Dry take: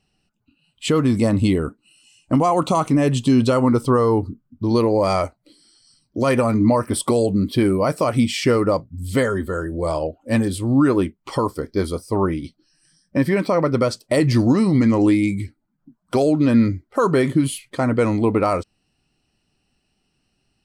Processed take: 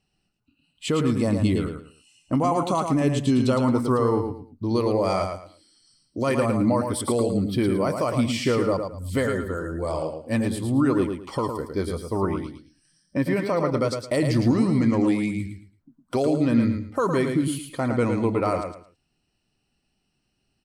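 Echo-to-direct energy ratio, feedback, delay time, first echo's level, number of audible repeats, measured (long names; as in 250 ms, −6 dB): −5.5 dB, 25%, 110 ms, −6.0 dB, 3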